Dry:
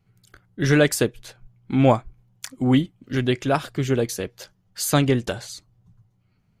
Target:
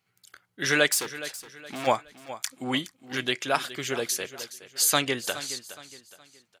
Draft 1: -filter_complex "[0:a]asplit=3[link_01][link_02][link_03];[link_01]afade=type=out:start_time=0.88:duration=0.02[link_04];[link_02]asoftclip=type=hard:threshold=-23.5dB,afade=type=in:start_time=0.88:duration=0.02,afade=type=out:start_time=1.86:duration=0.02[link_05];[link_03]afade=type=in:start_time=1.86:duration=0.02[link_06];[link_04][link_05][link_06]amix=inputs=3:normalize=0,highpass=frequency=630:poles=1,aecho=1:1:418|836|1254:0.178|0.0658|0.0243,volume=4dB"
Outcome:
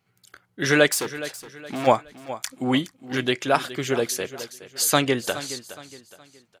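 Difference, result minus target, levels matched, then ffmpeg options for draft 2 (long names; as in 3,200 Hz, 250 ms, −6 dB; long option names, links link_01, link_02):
500 Hz band +3.5 dB
-filter_complex "[0:a]asplit=3[link_01][link_02][link_03];[link_01]afade=type=out:start_time=0.88:duration=0.02[link_04];[link_02]asoftclip=type=hard:threshold=-23.5dB,afade=type=in:start_time=0.88:duration=0.02,afade=type=out:start_time=1.86:duration=0.02[link_05];[link_03]afade=type=in:start_time=1.86:duration=0.02[link_06];[link_04][link_05][link_06]amix=inputs=3:normalize=0,highpass=frequency=1700:poles=1,aecho=1:1:418|836|1254:0.178|0.0658|0.0243,volume=4dB"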